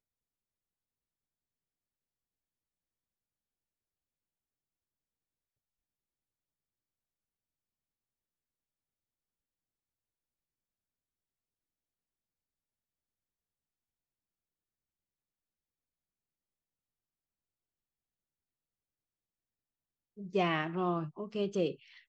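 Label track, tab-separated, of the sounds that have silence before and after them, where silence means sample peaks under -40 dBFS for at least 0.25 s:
20.190000	21.720000	sound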